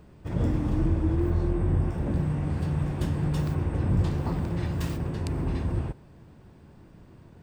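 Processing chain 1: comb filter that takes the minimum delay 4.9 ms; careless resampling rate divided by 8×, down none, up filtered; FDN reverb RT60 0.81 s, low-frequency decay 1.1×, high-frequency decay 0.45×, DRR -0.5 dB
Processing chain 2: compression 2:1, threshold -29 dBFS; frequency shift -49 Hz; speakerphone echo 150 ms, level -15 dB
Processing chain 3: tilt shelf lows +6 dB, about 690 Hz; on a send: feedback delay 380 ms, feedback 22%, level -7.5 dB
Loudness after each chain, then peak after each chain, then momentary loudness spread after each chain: -27.0 LUFS, -33.5 LUFS, -22.0 LUFS; -11.5 dBFS, -18.0 dBFS, -7.0 dBFS; 5 LU, 21 LU, 6 LU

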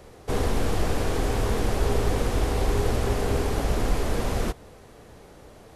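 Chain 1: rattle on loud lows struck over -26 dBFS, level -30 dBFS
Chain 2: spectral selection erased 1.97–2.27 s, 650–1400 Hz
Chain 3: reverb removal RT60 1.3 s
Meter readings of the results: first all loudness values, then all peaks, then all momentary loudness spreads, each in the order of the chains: -27.0 LUFS, -27.0 LUFS, -30.0 LUFS; -10.0 dBFS, -10.5 dBFS, -11.5 dBFS; 3 LU, 3 LU, 3 LU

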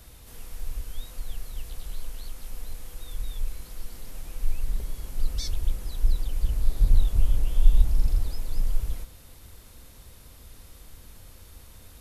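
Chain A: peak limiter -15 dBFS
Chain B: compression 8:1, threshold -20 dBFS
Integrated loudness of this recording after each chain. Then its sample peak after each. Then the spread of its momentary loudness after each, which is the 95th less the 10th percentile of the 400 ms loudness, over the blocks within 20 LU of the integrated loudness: -34.5 LUFS, -36.5 LUFS; -15.0 dBFS, -14.5 dBFS; 20 LU, 17 LU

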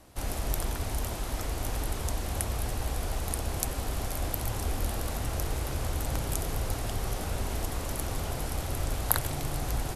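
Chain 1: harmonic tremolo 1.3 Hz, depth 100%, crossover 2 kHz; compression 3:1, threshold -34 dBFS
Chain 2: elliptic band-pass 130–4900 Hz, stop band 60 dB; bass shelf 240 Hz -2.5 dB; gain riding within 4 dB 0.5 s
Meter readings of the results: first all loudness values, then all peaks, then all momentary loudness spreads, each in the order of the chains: -40.5 LUFS, -38.5 LUFS; -11.5 dBFS, -15.5 dBFS; 2 LU, 1 LU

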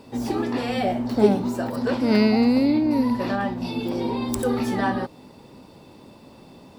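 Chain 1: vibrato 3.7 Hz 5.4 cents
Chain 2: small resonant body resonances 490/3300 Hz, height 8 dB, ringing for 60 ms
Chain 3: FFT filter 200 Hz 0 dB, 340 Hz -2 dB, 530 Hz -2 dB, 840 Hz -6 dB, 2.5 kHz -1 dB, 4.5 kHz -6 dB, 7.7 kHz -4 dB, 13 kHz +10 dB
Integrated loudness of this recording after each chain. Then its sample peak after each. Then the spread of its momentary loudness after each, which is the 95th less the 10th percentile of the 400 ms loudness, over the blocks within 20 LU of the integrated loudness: -22.5 LUFS, -22.0 LUFS, -24.0 LUFS; -5.5 dBFS, -4.5 dBFS, -5.5 dBFS; 9 LU, 9 LU, 9 LU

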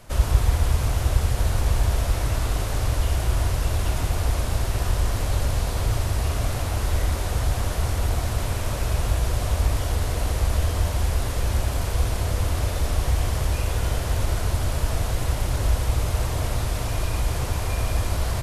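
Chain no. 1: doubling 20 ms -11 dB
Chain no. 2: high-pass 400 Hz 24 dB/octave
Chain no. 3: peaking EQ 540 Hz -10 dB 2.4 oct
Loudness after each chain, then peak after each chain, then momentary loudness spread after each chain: -25.0 LUFS, -32.5 LUFS, -26.5 LUFS; -5.0 dBFS, -20.0 dBFS, -5.5 dBFS; 3 LU, 0 LU, 3 LU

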